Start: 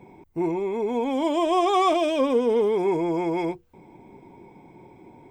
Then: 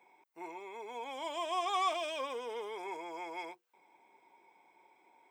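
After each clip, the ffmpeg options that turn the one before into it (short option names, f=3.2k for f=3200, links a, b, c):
-af "highpass=970,volume=-7dB"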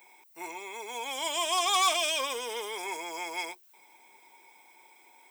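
-af "aeval=exprs='0.0944*(cos(1*acos(clip(val(0)/0.0944,-1,1)))-cos(1*PI/2))+0.0119*(cos(5*acos(clip(val(0)/0.0944,-1,1)))-cos(5*PI/2))+0.000841*(cos(6*acos(clip(val(0)/0.0944,-1,1)))-cos(6*PI/2))+0.00596*(cos(7*acos(clip(val(0)/0.0944,-1,1)))-cos(7*PI/2))':c=same,crystalizer=i=7.5:c=0"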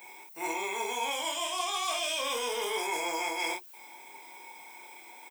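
-af "areverse,acompressor=threshold=-37dB:ratio=16,areverse,aecho=1:1:25|52:0.708|0.631,volume=6dB"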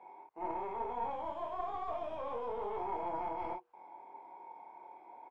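-af "aeval=exprs='clip(val(0),-1,0.0112)':c=same,lowpass=f=830:t=q:w=2,volume=-4dB"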